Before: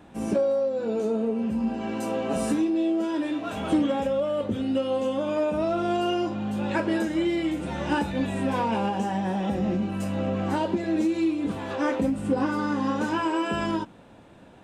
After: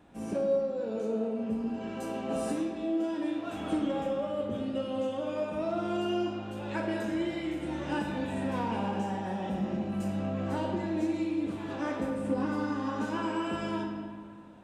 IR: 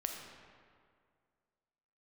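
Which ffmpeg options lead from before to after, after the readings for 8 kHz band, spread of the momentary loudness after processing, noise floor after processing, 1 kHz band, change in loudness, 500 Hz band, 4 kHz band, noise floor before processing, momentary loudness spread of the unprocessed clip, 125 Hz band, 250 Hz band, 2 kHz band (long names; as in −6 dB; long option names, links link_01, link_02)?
can't be measured, 5 LU, −41 dBFS, −6.5 dB, −6.0 dB, −6.0 dB, −6.5 dB, −50 dBFS, 4 LU, −5.5 dB, −6.0 dB, −6.5 dB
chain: -filter_complex "[1:a]atrim=start_sample=2205[link_01];[0:a][link_01]afir=irnorm=-1:irlink=0,volume=-7dB"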